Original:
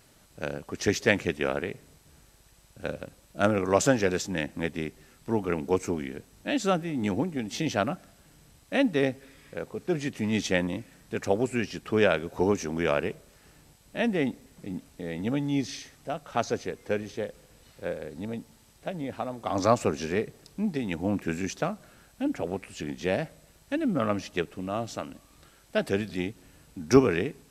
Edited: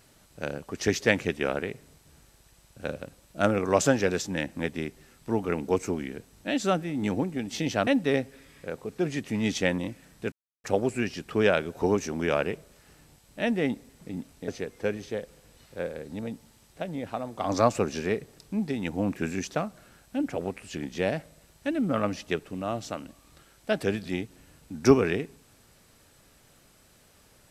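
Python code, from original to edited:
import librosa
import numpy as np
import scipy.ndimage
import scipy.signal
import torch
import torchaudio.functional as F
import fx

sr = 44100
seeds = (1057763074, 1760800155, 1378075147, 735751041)

y = fx.edit(x, sr, fx.cut(start_s=7.87, length_s=0.89),
    fx.insert_silence(at_s=11.21, length_s=0.32),
    fx.cut(start_s=15.05, length_s=1.49), tone=tone)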